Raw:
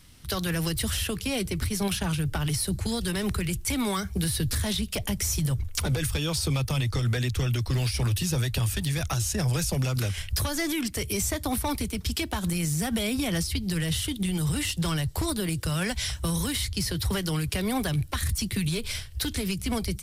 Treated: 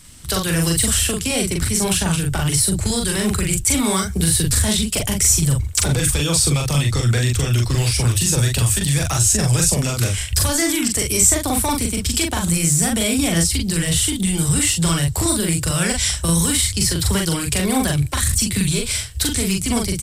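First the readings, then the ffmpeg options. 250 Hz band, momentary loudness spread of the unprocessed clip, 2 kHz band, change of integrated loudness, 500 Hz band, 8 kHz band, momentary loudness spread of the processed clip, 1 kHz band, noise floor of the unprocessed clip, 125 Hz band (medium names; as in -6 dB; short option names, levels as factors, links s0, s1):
+8.0 dB, 3 LU, +8.0 dB, +10.0 dB, +8.0 dB, +15.5 dB, 4 LU, +8.0 dB, -40 dBFS, +8.0 dB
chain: -filter_complex "[0:a]equalizer=f=7900:w=2.6:g=12.5,asplit=2[s0][s1];[s1]adelay=42,volume=0.75[s2];[s0][s2]amix=inputs=2:normalize=0,volume=2"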